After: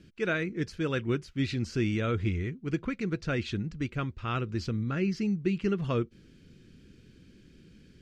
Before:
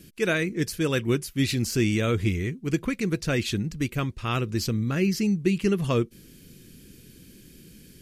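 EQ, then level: air absorption 140 m; bell 81 Hz +4.5 dB 0.34 oct; bell 1400 Hz +5.5 dB 0.28 oct; -5.0 dB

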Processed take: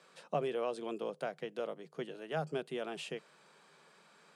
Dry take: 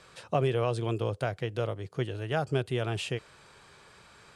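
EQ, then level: rippled Chebyshev high-pass 150 Hz, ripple 3 dB; -5.5 dB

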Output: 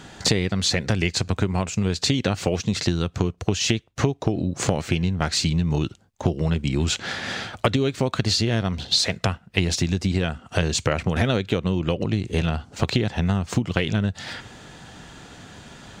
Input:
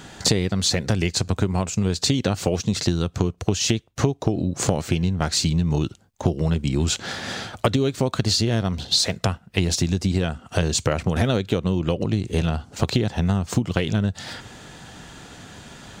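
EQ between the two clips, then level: dynamic EQ 2200 Hz, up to +5 dB, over -42 dBFS, Q 1.1; high shelf 10000 Hz -7.5 dB; -1.0 dB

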